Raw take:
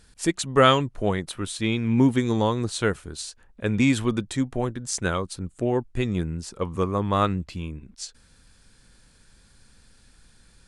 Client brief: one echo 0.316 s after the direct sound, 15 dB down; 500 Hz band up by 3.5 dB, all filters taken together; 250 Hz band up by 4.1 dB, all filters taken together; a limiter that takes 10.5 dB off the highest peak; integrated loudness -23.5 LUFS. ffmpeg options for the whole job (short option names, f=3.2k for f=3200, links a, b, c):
-af "equalizer=f=250:t=o:g=4,equalizer=f=500:t=o:g=3,alimiter=limit=-12dB:level=0:latency=1,aecho=1:1:316:0.178,volume=1dB"